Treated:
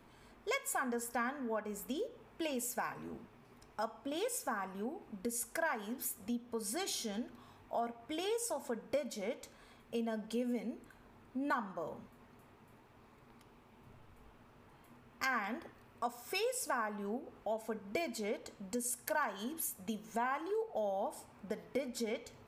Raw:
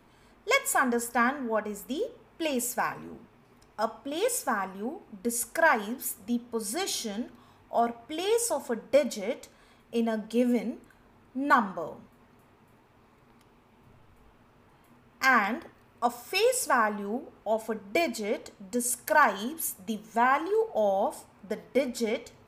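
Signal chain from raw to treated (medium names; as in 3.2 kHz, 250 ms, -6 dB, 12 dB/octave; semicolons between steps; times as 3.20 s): compression 2.5:1, threshold -36 dBFS, peak gain reduction 13 dB; trim -2 dB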